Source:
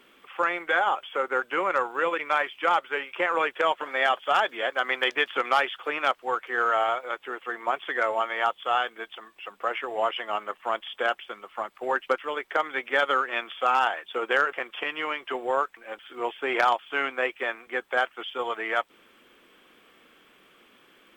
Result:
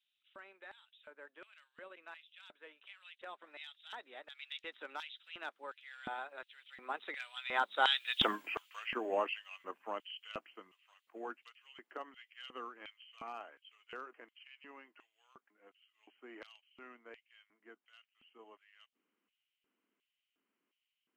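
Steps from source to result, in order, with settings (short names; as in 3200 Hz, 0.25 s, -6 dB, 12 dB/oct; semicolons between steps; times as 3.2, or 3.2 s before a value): Doppler pass-by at 8.26, 35 m/s, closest 3.1 m; LFO high-pass square 1.4 Hz 240–3100 Hz; gain +10.5 dB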